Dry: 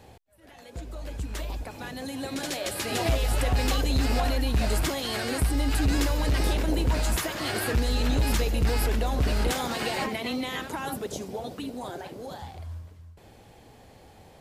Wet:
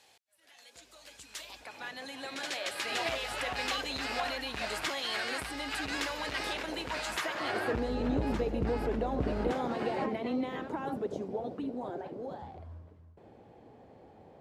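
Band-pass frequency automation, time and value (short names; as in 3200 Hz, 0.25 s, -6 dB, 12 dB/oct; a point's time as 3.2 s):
band-pass, Q 0.62
1.39 s 5200 Hz
1.8 s 2000 Hz
7.08 s 2000 Hz
7.99 s 380 Hz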